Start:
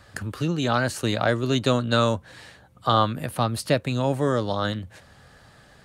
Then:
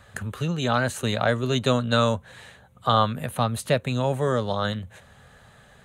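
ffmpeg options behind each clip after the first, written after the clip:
ffmpeg -i in.wav -af "superequalizer=6b=0.355:14b=0.355" out.wav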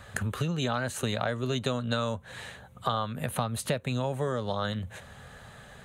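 ffmpeg -i in.wav -af "acompressor=threshold=-30dB:ratio=6,volume=3.5dB" out.wav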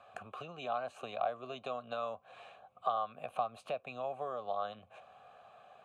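ffmpeg -i in.wav -filter_complex "[0:a]asplit=3[link_01][link_02][link_03];[link_01]bandpass=frequency=730:width_type=q:width=8,volume=0dB[link_04];[link_02]bandpass=frequency=1090:width_type=q:width=8,volume=-6dB[link_05];[link_03]bandpass=frequency=2440:width_type=q:width=8,volume=-9dB[link_06];[link_04][link_05][link_06]amix=inputs=3:normalize=0,volume=3.5dB" out.wav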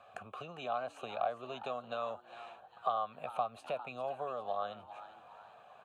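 ffmpeg -i in.wav -filter_complex "[0:a]asplit=5[link_01][link_02][link_03][link_04][link_05];[link_02]adelay=403,afreqshift=120,volume=-14.5dB[link_06];[link_03]adelay=806,afreqshift=240,volume=-22.2dB[link_07];[link_04]adelay=1209,afreqshift=360,volume=-30dB[link_08];[link_05]adelay=1612,afreqshift=480,volume=-37.7dB[link_09];[link_01][link_06][link_07][link_08][link_09]amix=inputs=5:normalize=0" out.wav

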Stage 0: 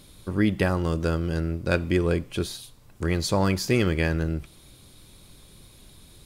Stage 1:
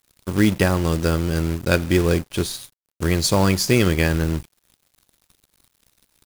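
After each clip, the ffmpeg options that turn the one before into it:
ffmpeg -i in.wav -af "bass=frequency=250:gain=1,treble=frequency=4000:gain=6,acrusher=bits=4:mode=log:mix=0:aa=0.000001,aeval=exprs='sgn(val(0))*max(abs(val(0))-0.00891,0)':channel_layout=same,volume=5dB" out.wav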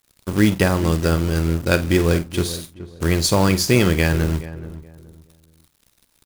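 ffmpeg -i in.wav -filter_complex "[0:a]asplit=2[link_01][link_02];[link_02]adelay=48,volume=-14dB[link_03];[link_01][link_03]amix=inputs=2:normalize=0,asplit=2[link_04][link_05];[link_05]adelay=424,lowpass=frequency=1100:poles=1,volume=-14dB,asplit=2[link_06][link_07];[link_07]adelay=424,lowpass=frequency=1100:poles=1,volume=0.29,asplit=2[link_08][link_09];[link_09]adelay=424,lowpass=frequency=1100:poles=1,volume=0.29[link_10];[link_04][link_06][link_08][link_10]amix=inputs=4:normalize=0,volume=1dB" out.wav

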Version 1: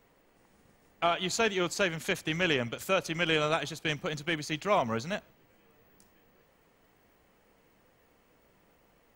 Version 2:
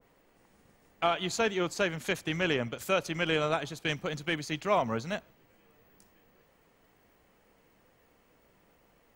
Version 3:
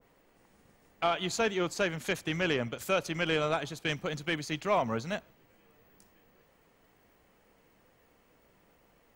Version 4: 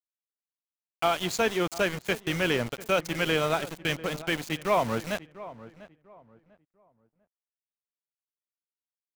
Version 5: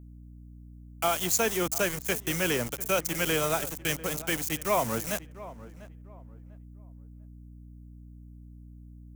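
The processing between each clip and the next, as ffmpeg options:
ffmpeg -i in.wav -af "adynamicequalizer=threshold=0.01:dfrequency=1700:dqfactor=0.7:tfrequency=1700:tqfactor=0.7:attack=5:release=100:ratio=0.375:range=3:mode=cutabove:tftype=highshelf" out.wav
ffmpeg -i in.wav -af "asoftclip=type=tanh:threshold=-15.5dB" out.wav
ffmpeg -i in.wav -filter_complex "[0:a]aeval=exprs='val(0)*gte(abs(val(0)),0.015)':channel_layout=same,asplit=2[link_01][link_02];[link_02]adelay=696,lowpass=frequency=1500:poles=1,volume=-16dB,asplit=2[link_03][link_04];[link_04]adelay=696,lowpass=frequency=1500:poles=1,volume=0.29,asplit=2[link_05][link_06];[link_06]adelay=696,lowpass=frequency=1500:poles=1,volume=0.29[link_07];[link_01][link_03][link_05][link_07]amix=inputs=4:normalize=0,volume=3.5dB" out.wav
ffmpeg -i in.wav -filter_complex "[0:a]acrossover=split=330|460|2300[link_01][link_02][link_03][link_04];[link_04]aexciter=amount=5.1:drive=3.5:freq=5700[link_05];[link_01][link_02][link_03][link_05]amix=inputs=4:normalize=0,aeval=exprs='val(0)+0.00631*(sin(2*PI*60*n/s)+sin(2*PI*2*60*n/s)/2+sin(2*PI*3*60*n/s)/3+sin(2*PI*4*60*n/s)/4+sin(2*PI*5*60*n/s)/5)':channel_layout=same,volume=-2dB" out.wav

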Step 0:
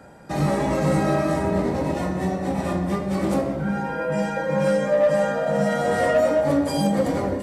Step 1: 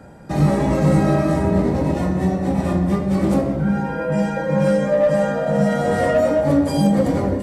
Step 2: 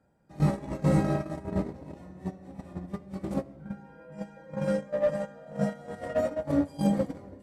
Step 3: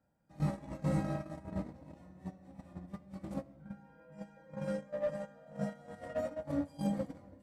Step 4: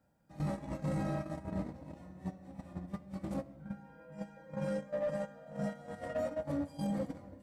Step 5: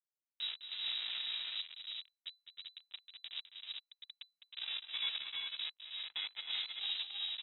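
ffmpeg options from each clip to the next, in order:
ffmpeg -i in.wav -af "lowshelf=frequency=320:gain=8.5" out.wav
ffmpeg -i in.wav -af "agate=range=-19dB:threshold=-15dB:ratio=16:detection=peak,volume=-7.5dB" out.wav
ffmpeg -i in.wav -af "equalizer=frequency=400:width_type=o:width=0.21:gain=-12,volume=-8.5dB" out.wav
ffmpeg -i in.wav -af "alimiter=level_in=8dB:limit=-24dB:level=0:latency=1:release=12,volume=-8dB,volume=4dB" out.wav
ffmpeg -i in.wav -af "acrusher=bits=4:mix=0:aa=0.5,aecho=1:1:207|314|324|389:0.316|0.422|0.447|0.631,lowpass=frequency=3400:width_type=q:width=0.5098,lowpass=frequency=3400:width_type=q:width=0.6013,lowpass=frequency=3400:width_type=q:width=0.9,lowpass=frequency=3400:width_type=q:width=2.563,afreqshift=-4000,volume=-4dB" out.wav

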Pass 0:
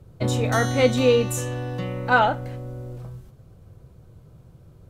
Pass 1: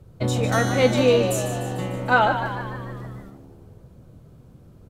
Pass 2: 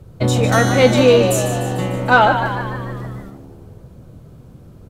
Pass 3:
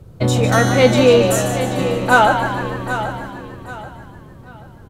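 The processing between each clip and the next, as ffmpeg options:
ffmpeg -i in.wav -filter_complex "[0:a]asplit=8[link_01][link_02][link_03][link_04][link_05][link_06][link_07][link_08];[link_02]adelay=149,afreqshift=73,volume=-9dB[link_09];[link_03]adelay=298,afreqshift=146,volume=-14dB[link_10];[link_04]adelay=447,afreqshift=219,volume=-19.1dB[link_11];[link_05]adelay=596,afreqshift=292,volume=-24.1dB[link_12];[link_06]adelay=745,afreqshift=365,volume=-29.1dB[link_13];[link_07]adelay=894,afreqshift=438,volume=-34.2dB[link_14];[link_08]adelay=1043,afreqshift=511,volume=-39.2dB[link_15];[link_01][link_09][link_10][link_11][link_12][link_13][link_14][link_15]amix=inputs=8:normalize=0" out.wav
ffmpeg -i in.wav -af "asoftclip=type=tanh:threshold=-7dB,volume=7dB" out.wav
ffmpeg -i in.wav -af "aecho=1:1:783|1566|2349:0.282|0.0874|0.0271" out.wav

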